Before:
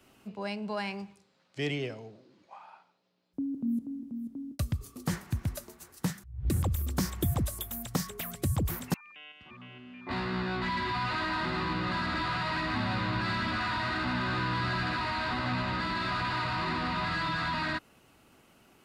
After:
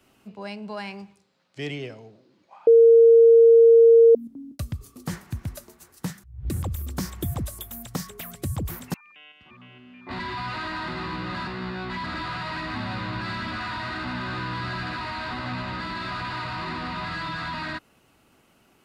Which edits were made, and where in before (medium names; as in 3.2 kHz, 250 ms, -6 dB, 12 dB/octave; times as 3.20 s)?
2.67–4.15 s: bleep 460 Hz -9.5 dBFS
10.19–10.76 s: move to 12.04 s